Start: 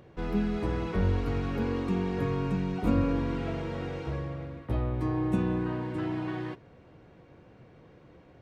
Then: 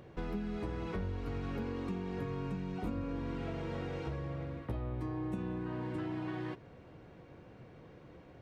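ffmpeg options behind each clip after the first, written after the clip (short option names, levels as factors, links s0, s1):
-af "acompressor=threshold=0.0178:ratio=6"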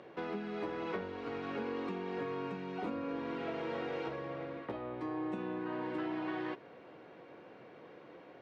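-af "highpass=330,lowpass=4100,volume=1.68"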